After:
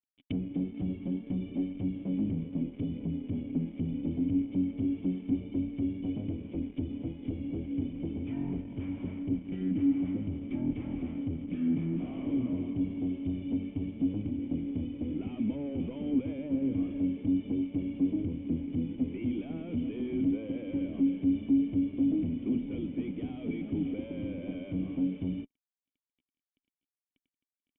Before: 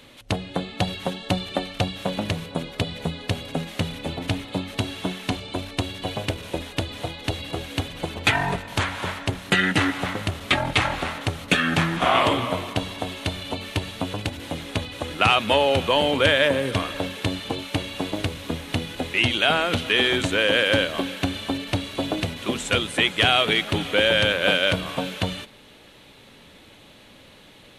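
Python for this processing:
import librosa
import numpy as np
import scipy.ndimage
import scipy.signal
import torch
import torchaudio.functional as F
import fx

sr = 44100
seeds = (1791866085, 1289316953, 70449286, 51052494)

y = fx.fuzz(x, sr, gain_db=35.0, gate_db=-39.0)
y = fx.env_lowpass_down(y, sr, base_hz=970.0, full_db=-17.0)
y = fx.formant_cascade(y, sr, vowel='i')
y = F.gain(torch.from_numpy(y), -6.0).numpy()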